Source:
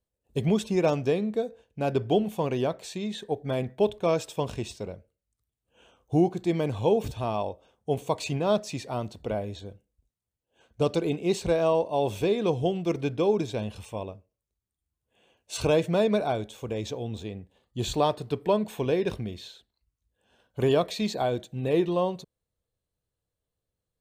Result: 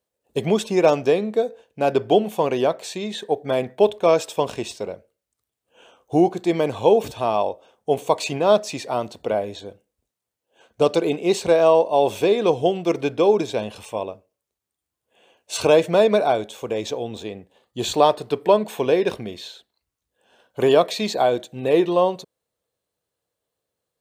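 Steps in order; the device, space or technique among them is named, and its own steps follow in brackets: filter by subtraction (in parallel: LPF 570 Hz 12 dB/oct + phase invert); on the sum: gain +7 dB

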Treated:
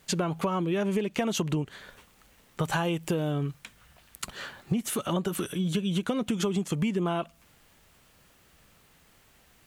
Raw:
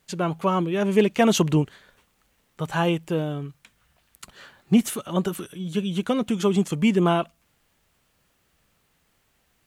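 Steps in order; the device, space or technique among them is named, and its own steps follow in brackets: serial compression, peaks first (compressor 5:1, threshold -28 dBFS, peak gain reduction 14 dB; compressor 2.5:1, threshold -33 dBFS, peak gain reduction 6 dB); 2.63–3.31 high shelf 5100 Hz +5 dB; gain +7 dB

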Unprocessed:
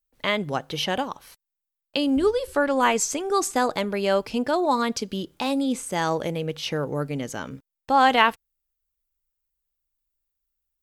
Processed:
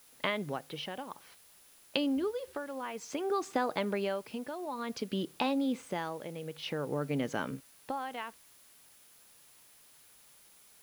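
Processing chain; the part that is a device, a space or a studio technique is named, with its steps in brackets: medium wave at night (BPF 130–3600 Hz; compressor, threshold -27 dBFS, peak gain reduction 14 dB; tremolo 0.55 Hz, depth 68%; whine 10000 Hz -64 dBFS; white noise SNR 24 dB)

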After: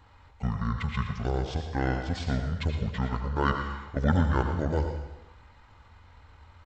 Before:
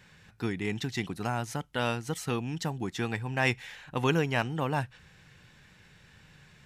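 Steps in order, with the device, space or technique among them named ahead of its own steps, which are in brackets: monster voice (pitch shift -10.5 st; low shelf 130 Hz +5.5 dB; echo 0.115 s -11 dB; reverb RT60 0.90 s, pre-delay 72 ms, DRR 6 dB)

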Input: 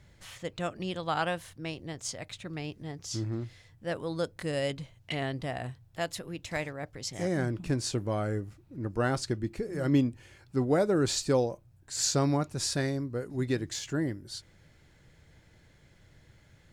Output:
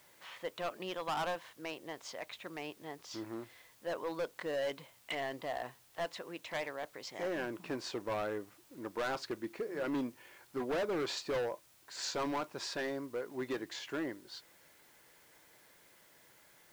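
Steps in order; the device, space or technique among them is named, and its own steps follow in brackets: drive-through speaker (BPF 410–3200 Hz; bell 1000 Hz +6 dB 0.36 oct; hard clip -31.5 dBFS, distortion -6 dB; white noise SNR 25 dB)

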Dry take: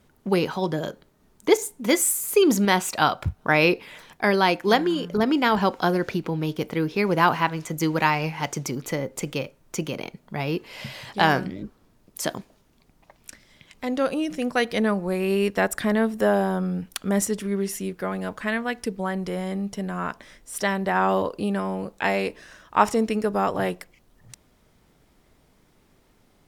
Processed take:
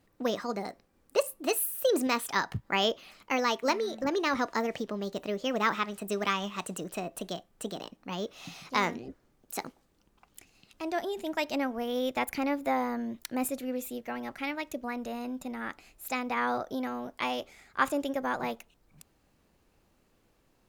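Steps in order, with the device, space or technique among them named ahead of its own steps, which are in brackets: nightcore (varispeed +28%); gain -8 dB

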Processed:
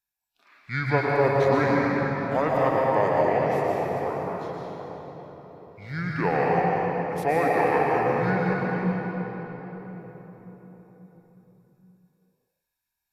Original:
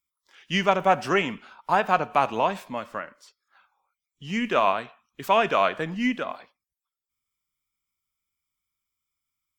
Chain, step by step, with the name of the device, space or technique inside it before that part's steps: slowed and reverbed (varispeed -27%; reverb RT60 4.6 s, pre-delay 0.107 s, DRR -4 dB); gain -4.5 dB

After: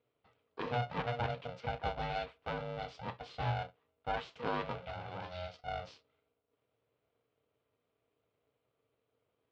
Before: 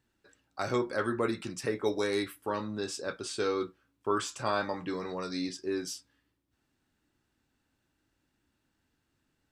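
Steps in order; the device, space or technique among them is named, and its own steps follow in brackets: 4.78–5.64 HPF 250 Hz 6 dB/oct; ring modulator pedal into a guitar cabinet (polarity switched at an audio rate 360 Hz; speaker cabinet 80–3500 Hz, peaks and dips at 120 Hz +8 dB, 220 Hz -3 dB, 460 Hz +9 dB, 1800 Hz -7 dB); gain -6 dB

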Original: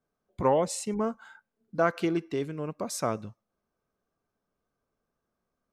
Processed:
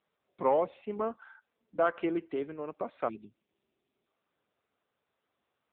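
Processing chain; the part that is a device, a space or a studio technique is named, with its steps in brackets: spectral delete 3.08–4.07, 410–2200 Hz; telephone (BPF 320–3000 Hz; soft clip -14.5 dBFS, distortion -21 dB; AMR-NB 6.7 kbps 8000 Hz)

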